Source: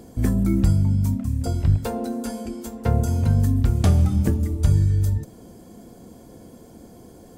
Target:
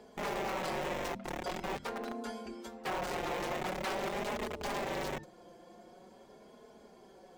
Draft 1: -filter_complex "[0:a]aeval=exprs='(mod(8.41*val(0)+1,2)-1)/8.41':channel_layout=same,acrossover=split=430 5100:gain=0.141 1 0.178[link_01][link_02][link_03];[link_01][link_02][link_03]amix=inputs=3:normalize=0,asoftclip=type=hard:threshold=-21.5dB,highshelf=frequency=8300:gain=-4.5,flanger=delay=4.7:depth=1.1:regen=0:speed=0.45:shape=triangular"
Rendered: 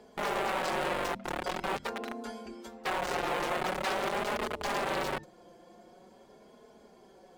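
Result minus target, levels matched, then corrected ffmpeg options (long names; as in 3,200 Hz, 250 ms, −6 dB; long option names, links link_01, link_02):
hard clipping: distortion −8 dB
-filter_complex "[0:a]aeval=exprs='(mod(8.41*val(0)+1,2)-1)/8.41':channel_layout=same,acrossover=split=430 5100:gain=0.141 1 0.178[link_01][link_02][link_03];[link_01][link_02][link_03]amix=inputs=3:normalize=0,asoftclip=type=hard:threshold=-29.5dB,highshelf=frequency=8300:gain=-4.5,flanger=delay=4.7:depth=1.1:regen=0:speed=0.45:shape=triangular"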